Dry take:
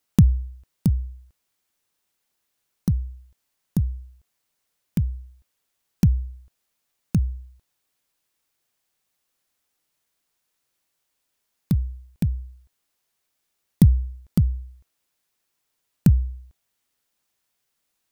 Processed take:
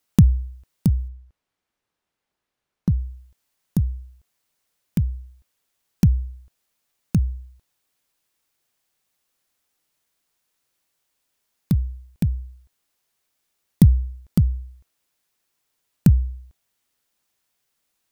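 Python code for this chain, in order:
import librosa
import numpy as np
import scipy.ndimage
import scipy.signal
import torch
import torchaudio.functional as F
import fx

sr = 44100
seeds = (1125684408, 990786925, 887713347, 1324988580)

y = fx.lowpass(x, sr, hz=1800.0, slope=6, at=(1.08, 2.98))
y = y * librosa.db_to_amplitude(1.5)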